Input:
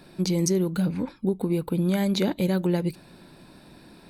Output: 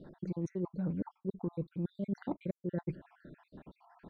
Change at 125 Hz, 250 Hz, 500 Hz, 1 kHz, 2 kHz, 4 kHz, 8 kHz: -12.0 dB, -13.0 dB, -14.0 dB, -12.5 dB, -19.0 dB, under -30 dB, under -35 dB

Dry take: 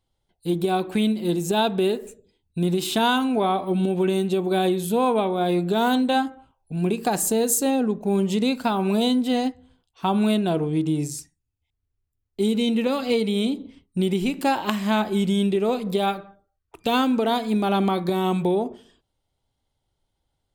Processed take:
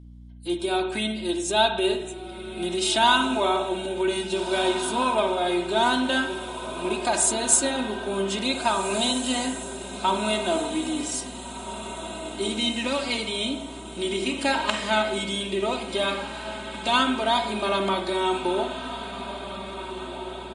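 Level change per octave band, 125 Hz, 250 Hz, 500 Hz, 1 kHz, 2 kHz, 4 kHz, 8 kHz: -11.5 dB, -6.5 dB, -2.5 dB, +0.5 dB, +4.5 dB, +4.5 dB, +4.5 dB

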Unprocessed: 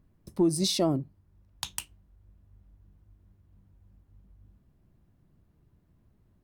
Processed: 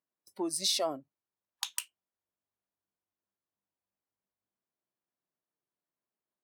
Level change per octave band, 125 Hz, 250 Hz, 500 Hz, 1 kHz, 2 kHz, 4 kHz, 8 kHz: -24.0 dB, -13.0 dB, -6.5 dB, -1.5 dB, 0.0 dB, 0.0 dB, 0.0 dB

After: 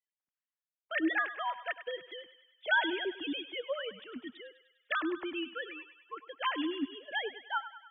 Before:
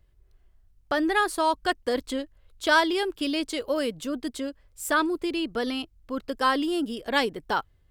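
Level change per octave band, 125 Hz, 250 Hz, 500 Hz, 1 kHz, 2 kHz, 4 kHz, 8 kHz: under -15 dB, -10.0 dB, -11.5 dB, -10.5 dB, -5.0 dB, -7.5 dB, under -40 dB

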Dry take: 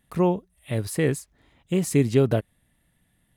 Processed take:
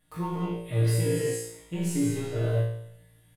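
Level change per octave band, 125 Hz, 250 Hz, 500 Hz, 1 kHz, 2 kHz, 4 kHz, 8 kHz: 0.0 dB, -5.0 dB, -6.0 dB, -5.5 dB, -5.0 dB, -2.0 dB, -1.0 dB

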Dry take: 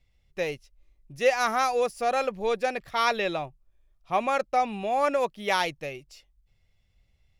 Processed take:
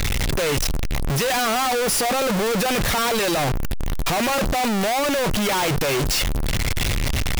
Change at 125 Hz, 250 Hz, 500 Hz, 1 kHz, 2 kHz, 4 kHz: +22.0 dB, +13.0 dB, +4.0 dB, +3.0 dB, +7.0 dB, +12.5 dB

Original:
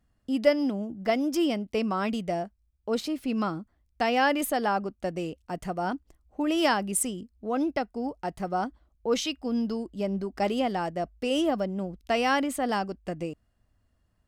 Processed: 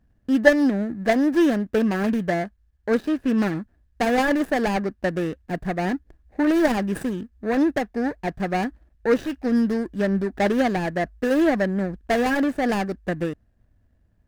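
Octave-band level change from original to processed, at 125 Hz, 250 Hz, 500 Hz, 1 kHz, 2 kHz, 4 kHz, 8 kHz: +8.0 dB, +7.5 dB, +5.5 dB, +1.5 dB, +6.5 dB, -2.0 dB, -6.5 dB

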